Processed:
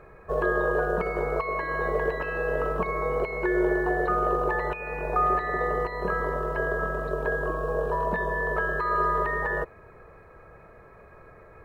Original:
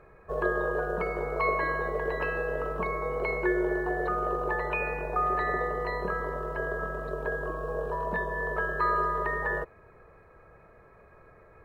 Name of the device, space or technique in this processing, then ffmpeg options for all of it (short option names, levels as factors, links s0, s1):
de-esser from a sidechain: -filter_complex "[0:a]asplit=2[s0][s1];[s1]highpass=f=4000:w=0.5412,highpass=f=4000:w=1.3066,apad=whole_len=513624[s2];[s0][s2]sidechaincompress=threshold=0.001:ratio=10:attack=2.2:release=46,volume=1.78"